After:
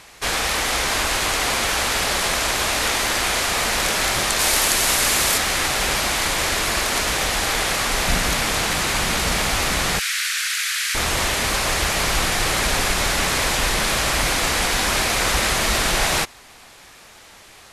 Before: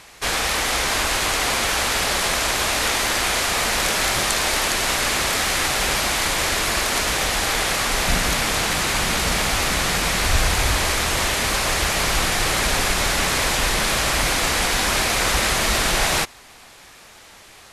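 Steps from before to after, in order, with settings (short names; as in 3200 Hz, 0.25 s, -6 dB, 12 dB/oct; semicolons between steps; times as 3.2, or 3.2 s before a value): 4.39–5.38 high shelf 6700 Hz +9.5 dB; 9.99–10.95 steep high-pass 1400 Hz 48 dB/oct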